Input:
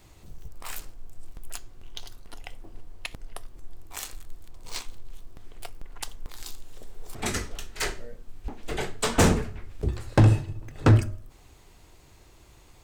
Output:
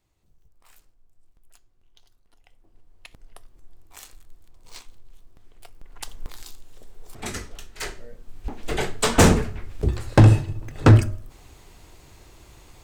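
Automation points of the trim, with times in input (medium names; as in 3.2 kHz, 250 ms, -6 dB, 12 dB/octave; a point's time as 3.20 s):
2.35 s -19 dB
3.24 s -7.5 dB
5.65 s -7.5 dB
6.27 s +4 dB
6.47 s -3 dB
7.91 s -3 dB
8.60 s +5 dB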